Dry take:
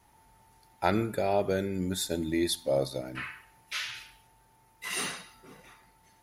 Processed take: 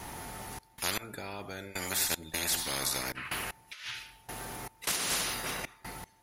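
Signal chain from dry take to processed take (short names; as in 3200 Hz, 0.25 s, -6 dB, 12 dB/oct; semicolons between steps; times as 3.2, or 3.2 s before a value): 3.25–5.51 negative-ratio compressor -39 dBFS, ratio -0.5; step gate "xxx.x....xx.x" 77 bpm -24 dB; spectral compressor 10:1; gain -2.5 dB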